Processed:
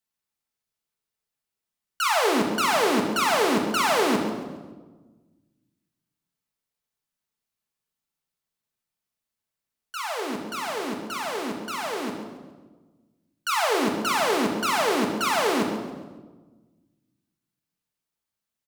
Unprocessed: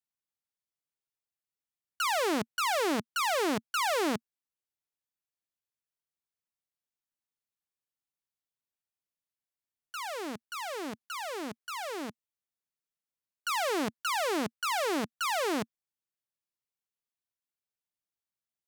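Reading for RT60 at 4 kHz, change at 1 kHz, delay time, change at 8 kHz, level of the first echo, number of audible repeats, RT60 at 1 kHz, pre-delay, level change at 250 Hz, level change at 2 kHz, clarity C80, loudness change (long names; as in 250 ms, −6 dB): 1.0 s, +7.5 dB, 138 ms, +6.5 dB, −12.5 dB, 1, 1.2 s, 5 ms, +8.5 dB, +7.0 dB, 6.5 dB, +7.0 dB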